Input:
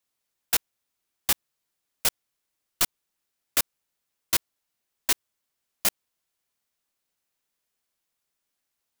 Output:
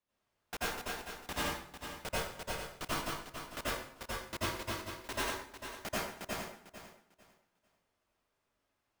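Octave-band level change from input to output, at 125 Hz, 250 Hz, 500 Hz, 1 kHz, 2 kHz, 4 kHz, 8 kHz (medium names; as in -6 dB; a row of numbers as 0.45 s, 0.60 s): +4.0 dB, +2.5 dB, +3.0 dB, +1.0 dB, -2.5 dB, -8.5 dB, -14.0 dB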